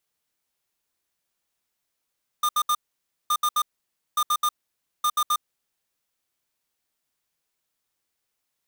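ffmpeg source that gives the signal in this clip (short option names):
-f lavfi -i "aevalsrc='0.0841*(2*lt(mod(1210*t,1),0.5)-1)*clip(min(mod(mod(t,0.87),0.13),0.06-mod(mod(t,0.87),0.13))/0.005,0,1)*lt(mod(t,0.87),0.39)':d=3.48:s=44100"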